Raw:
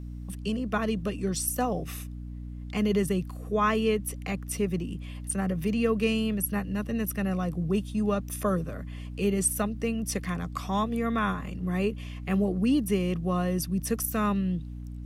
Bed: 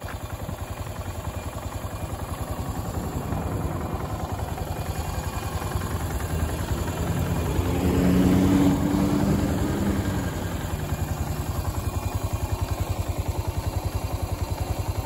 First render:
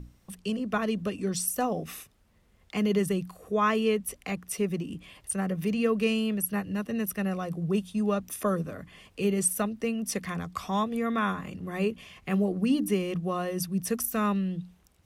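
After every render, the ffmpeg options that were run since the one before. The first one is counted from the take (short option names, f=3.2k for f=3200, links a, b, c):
-af "bandreject=f=60:t=h:w=6,bandreject=f=120:t=h:w=6,bandreject=f=180:t=h:w=6,bandreject=f=240:t=h:w=6,bandreject=f=300:t=h:w=6"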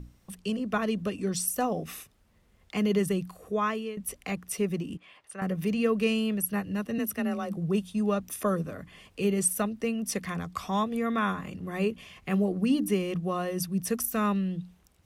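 -filter_complex "[0:a]asettb=1/sr,asplit=3[a][b][c];[a]atrim=end=4.974[d];[b]atrim=start=4.97:end=5.42,asetpts=PTS-STARTPTS,afade=t=in:d=0.004:c=qsin,afade=t=out:st=0.446:d=0.004:c=qsin,bandpass=f=1.3k:t=q:w=0.68[e];[c]atrim=start=5.416[f];[d][e]acrossfade=d=0.004:c1=hsin:c2=qsin[g];[g][f]acrossfade=d=0.004:c1=qsin:c2=hsin,asettb=1/sr,asplit=3[h][i][j];[h]atrim=end=6.984[k];[i]atrim=start=6.98:end=7.57,asetpts=PTS-STARTPTS,afade=t=in:d=0.004:c=qsin,afade=t=out:st=0.586:d=0.004:c=qsin,afreqshift=27[l];[j]atrim=start=7.566[m];[k][l]acrossfade=d=0.004:c1=hsin:c2=qsin[n];[n][m]acrossfade=d=0.004:c1=qsin:c2=hsin,asplit=2[o][p];[o]atrim=end=3.97,asetpts=PTS-STARTPTS,afade=t=out:st=3.44:d=0.53:silence=0.158489[q];[p]atrim=start=3.97,asetpts=PTS-STARTPTS,afade=t=in:d=0.004:c=hsin:silence=0.158489[r];[q][r]concat=n=2:v=0:a=1"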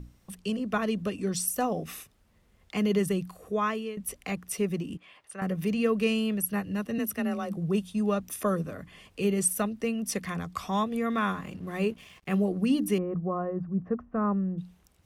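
-filter_complex "[0:a]asettb=1/sr,asplit=3[a][b][c];[a]atrim=end=11.104[d];[b]atrim=start=11.1:end=12.34,asetpts=PTS-STARTPTS,afade=t=in:d=0.004:c=qsin,afade=t=out:st=1.236:d=0.004:c=qsin,aeval=exprs='sgn(val(0))*max(abs(val(0))-0.00141,0)':c=same[e];[c]atrim=start=12.336[f];[d][e]acrossfade=d=0.004:c1=hsin:c2=qsin[g];[g][f]acrossfade=d=0.004:c1=qsin:c2=hsin,asettb=1/sr,asplit=3[h][i][j];[h]atrim=end=12.984[k];[i]atrim=start=12.98:end=14.58,asetpts=PTS-STARTPTS,afade=t=in:d=0.004:c=qsin,afade=t=out:st=1.596:d=0.004:c=qsin,lowpass=f=1.3k:w=0.5412,lowpass=f=1.3k:w=1.3066[l];[j]atrim=start=14.576[m];[k][l]acrossfade=d=0.004:c1=hsin:c2=qsin[n];[n][m]acrossfade=d=0.004:c1=qsin:c2=hsin"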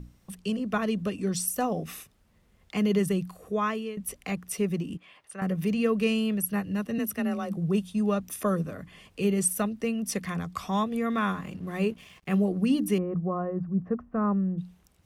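-af "equalizer=f=170:t=o:w=0.77:g=2.5"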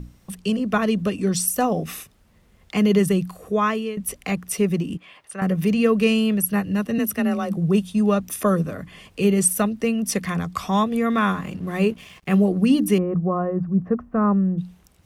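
-af "volume=7dB"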